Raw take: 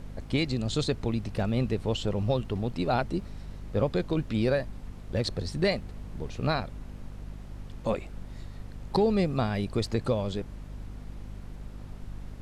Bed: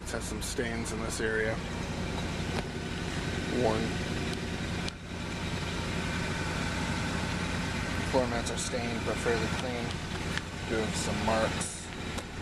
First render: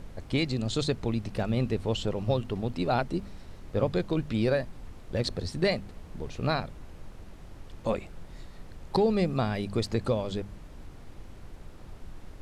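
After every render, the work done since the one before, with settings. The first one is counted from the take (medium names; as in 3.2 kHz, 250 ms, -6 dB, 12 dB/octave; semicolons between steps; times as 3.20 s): de-hum 50 Hz, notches 5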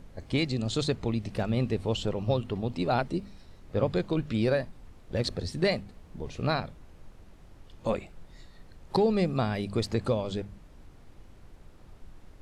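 noise print and reduce 6 dB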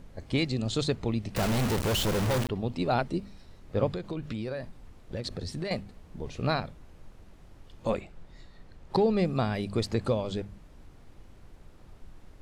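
1.36–2.49 s: companded quantiser 2-bit; 3.88–5.71 s: compression, threshold -30 dBFS; 8.00–9.25 s: treble shelf 7.4 kHz -8.5 dB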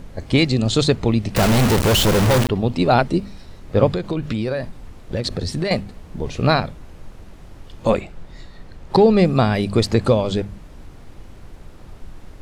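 trim +11.5 dB; peak limiter -2 dBFS, peak gain reduction 1.5 dB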